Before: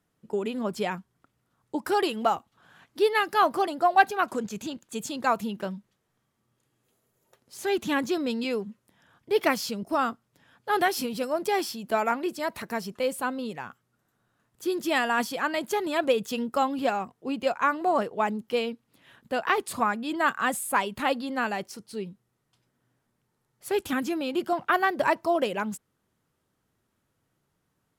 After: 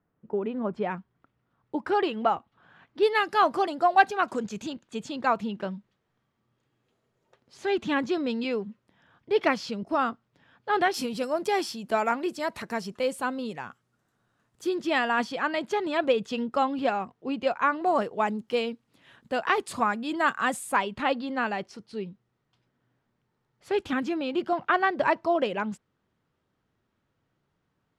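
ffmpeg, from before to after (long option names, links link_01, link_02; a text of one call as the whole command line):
ffmpeg -i in.wav -af "asetnsamples=nb_out_samples=441:pad=0,asendcmd='0.9 lowpass f 2900;3.03 lowpass f 6800;4.73 lowpass f 4100;10.94 lowpass f 8700;14.69 lowpass f 4500;17.86 lowpass f 8200;20.76 lowpass f 4200',lowpass=1600" out.wav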